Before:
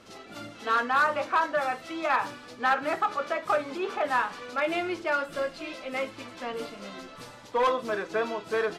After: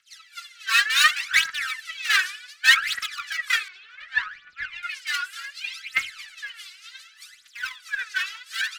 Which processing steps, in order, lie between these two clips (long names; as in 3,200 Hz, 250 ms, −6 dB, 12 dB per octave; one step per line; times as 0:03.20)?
wavefolder on the positive side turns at −22.5 dBFS
Butterworth high-pass 1,500 Hz 48 dB per octave
0:06.37–0:07.99: downward compressor 2 to 1, threshold −44 dBFS, peak gain reduction 8 dB
phase shifter 0.67 Hz, delay 2.8 ms, feedback 79%
0:03.68–0:04.83: head-to-tape spacing loss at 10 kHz 29 dB
multiband upward and downward expander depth 70%
level +7 dB